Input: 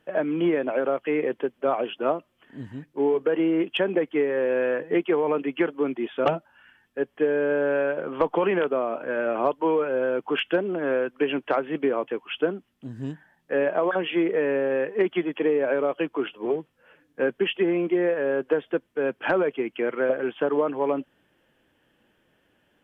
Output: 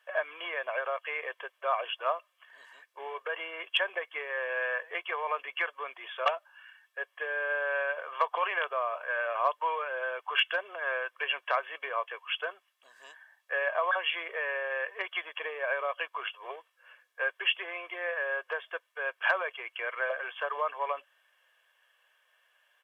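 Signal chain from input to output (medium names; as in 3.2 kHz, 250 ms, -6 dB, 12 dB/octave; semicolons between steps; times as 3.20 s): high-pass 820 Hz 24 dB/octave; comb 1.8 ms, depth 54%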